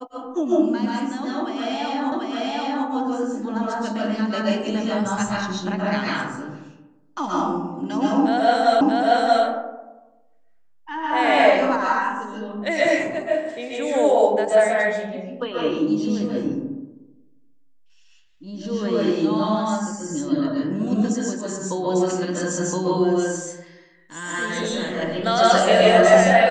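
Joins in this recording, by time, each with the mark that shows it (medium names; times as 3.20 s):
2.12 s: repeat of the last 0.74 s
8.81 s: repeat of the last 0.63 s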